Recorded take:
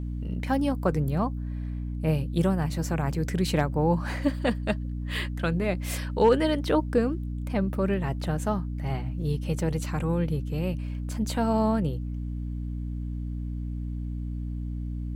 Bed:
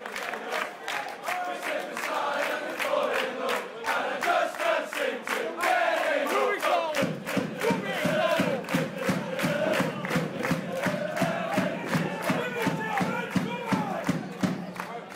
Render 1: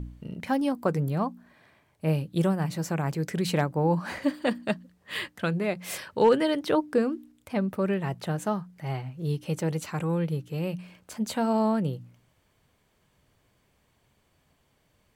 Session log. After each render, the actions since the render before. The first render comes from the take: de-hum 60 Hz, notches 5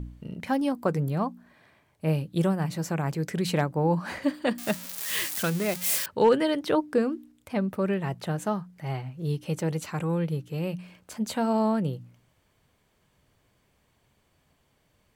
4.58–6.06 s: zero-crossing glitches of -21.5 dBFS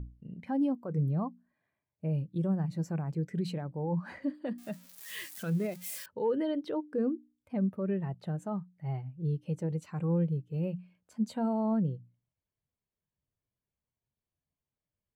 peak limiter -21.5 dBFS, peak gain reduction 9.5 dB; spectral contrast expander 1.5:1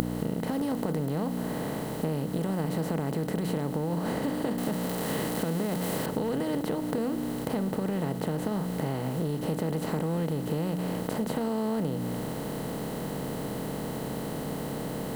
spectral levelling over time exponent 0.2; compression, threshold -26 dBFS, peak gain reduction 7.5 dB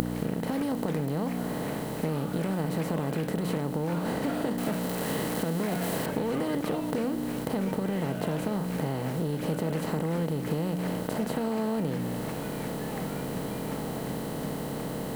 add bed -16 dB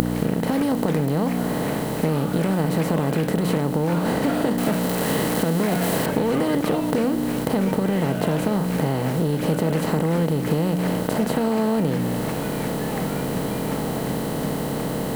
trim +8 dB; peak limiter -2 dBFS, peak gain reduction 1 dB

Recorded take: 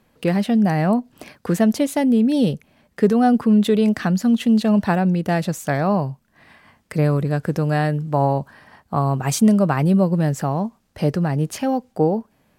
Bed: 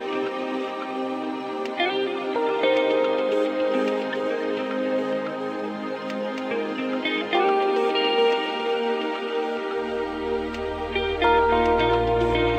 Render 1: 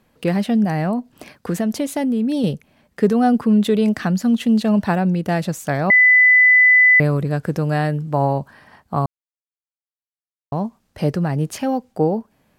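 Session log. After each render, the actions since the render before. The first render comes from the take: 0.64–2.44 s: compression 3:1, threshold -17 dBFS; 5.90–7.00 s: bleep 2 kHz -8 dBFS; 9.06–10.52 s: mute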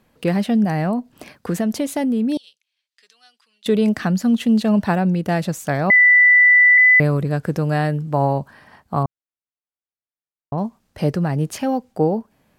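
2.37–3.66 s: ladder band-pass 4.6 kHz, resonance 30%; 5.96–6.78 s: bleep 1.98 kHz -8 dBFS; 9.03–10.58 s: distance through air 380 m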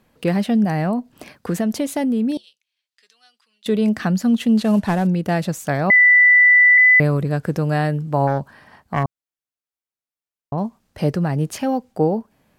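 2.31–4.00 s: feedback comb 72 Hz, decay 0.16 s, harmonics odd, mix 30%; 4.58–5.07 s: CVSD coder 64 kbps; 8.27–9.04 s: self-modulated delay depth 0.22 ms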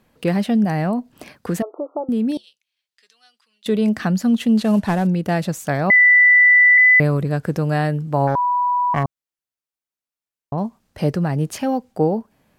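1.62–2.09 s: brick-wall FIR band-pass 300–1400 Hz; 8.35–8.94 s: bleep 982 Hz -15.5 dBFS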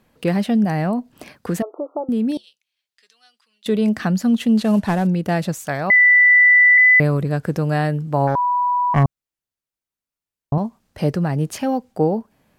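5.54–6.30 s: peaking EQ 200 Hz -6 dB 2.9 oct; 8.95–10.58 s: bass shelf 230 Hz +10.5 dB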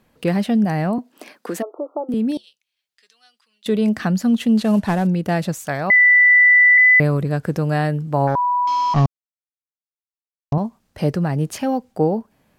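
0.98–2.14 s: high-pass 250 Hz 24 dB/octave; 8.67–10.53 s: CVSD coder 32 kbps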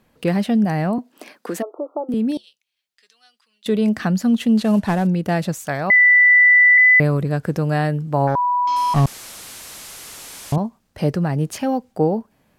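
8.76–10.56 s: one-bit delta coder 64 kbps, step -29.5 dBFS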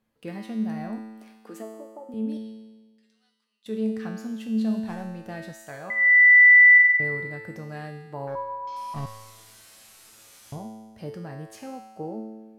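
feedback comb 110 Hz, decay 1.3 s, harmonics all, mix 90%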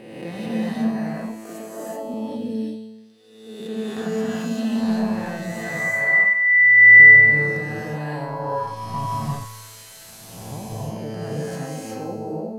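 reverse spectral sustain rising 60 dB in 1.34 s; gated-style reverb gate 410 ms rising, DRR -4.5 dB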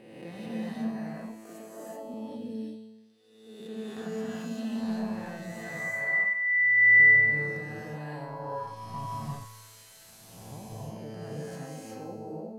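trim -10 dB

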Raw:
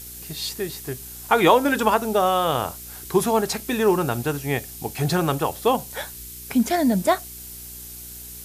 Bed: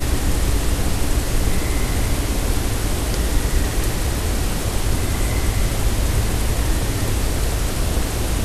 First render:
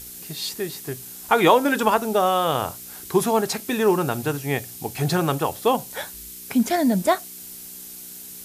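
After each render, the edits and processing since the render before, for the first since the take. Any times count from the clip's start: de-hum 60 Hz, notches 2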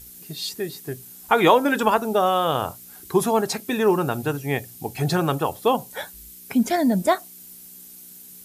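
noise reduction 8 dB, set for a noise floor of -39 dBFS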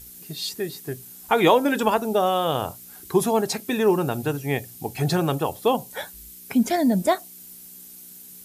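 dynamic bell 1.3 kHz, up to -5 dB, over -34 dBFS, Q 1.5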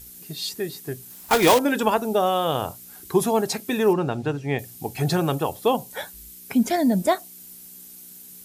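1.10–1.60 s: block-companded coder 3-bit; 3.93–4.59 s: distance through air 100 m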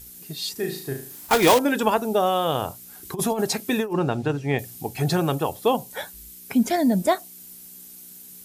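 0.52–1.27 s: flutter echo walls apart 6.3 m, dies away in 0.47 s; 3.03–4.82 s: compressor with a negative ratio -22 dBFS, ratio -0.5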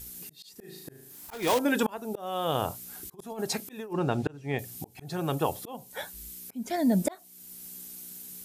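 slow attack 592 ms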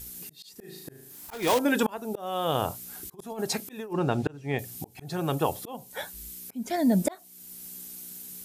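trim +1.5 dB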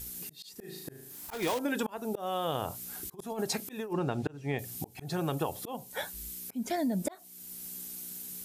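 compression 6:1, threshold -28 dBFS, peak gain reduction 9.5 dB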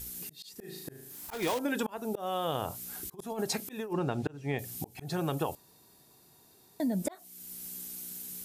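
5.55–6.80 s: room tone

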